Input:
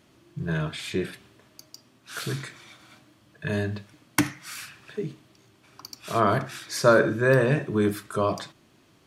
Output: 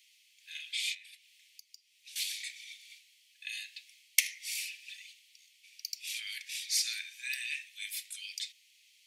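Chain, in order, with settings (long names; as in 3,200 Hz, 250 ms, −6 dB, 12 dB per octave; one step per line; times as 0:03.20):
Butterworth high-pass 2,100 Hz 72 dB per octave
0:00.94–0:02.16: downward compressor 16 to 1, threshold −52 dBFS, peak gain reduction 14.5 dB
0:04.65–0:05.10: comb filter 5.1 ms, depth 76%
level +2.5 dB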